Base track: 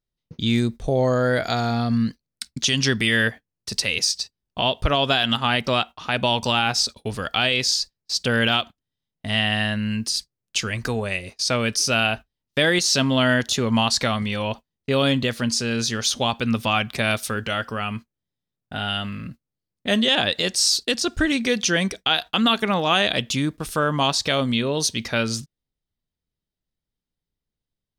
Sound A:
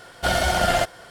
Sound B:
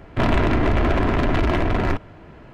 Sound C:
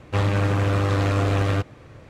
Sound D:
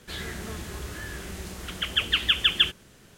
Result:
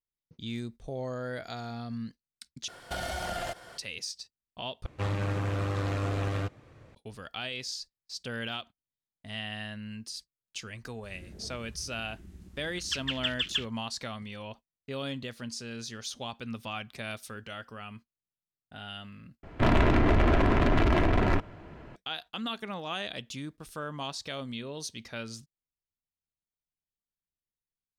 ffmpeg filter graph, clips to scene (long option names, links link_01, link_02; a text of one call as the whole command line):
ffmpeg -i bed.wav -i cue0.wav -i cue1.wav -i cue2.wav -i cue3.wav -filter_complex "[0:a]volume=-16dB[link_01];[1:a]acompressor=threshold=-26dB:ratio=6:attack=3.2:release=140:knee=1:detection=peak[link_02];[4:a]afwtdn=0.0316[link_03];[link_01]asplit=4[link_04][link_05][link_06][link_07];[link_04]atrim=end=2.684[link_08];[link_02]atrim=end=1.1,asetpts=PTS-STARTPTS,volume=-5dB[link_09];[link_05]atrim=start=3.776:end=4.864[link_10];[3:a]atrim=end=2.09,asetpts=PTS-STARTPTS,volume=-9.5dB[link_11];[link_06]atrim=start=6.946:end=19.434[link_12];[2:a]atrim=end=2.53,asetpts=PTS-STARTPTS,volume=-4dB[link_13];[link_07]atrim=start=21.956[link_14];[link_03]atrim=end=3.17,asetpts=PTS-STARTPTS,volume=-9.5dB,afade=type=in:duration=0.004:curve=hsin,afade=type=out:start_time=3.166:duration=0.004:curve=hsin,adelay=10950[link_15];[link_08][link_09]acrossfade=duration=0.004:curve1=hsin:curve2=hsin[link_16];[link_16][link_10]acrossfade=duration=0.004:curve1=hsin:curve2=hsin[link_17];[link_17][link_11]acrossfade=duration=0.004:curve1=hsin:curve2=hsin[link_18];[link_18][link_12]acrossfade=duration=0.004:curve1=hsin:curve2=hsin[link_19];[link_19][link_13]acrossfade=duration=0.004:curve1=hsin:curve2=hsin[link_20];[link_20][link_14]acrossfade=duration=0.004:curve1=hsin:curve2=hsin[link_21];[link_21][link_15]amix=inputs=2:normalize=0" out.wav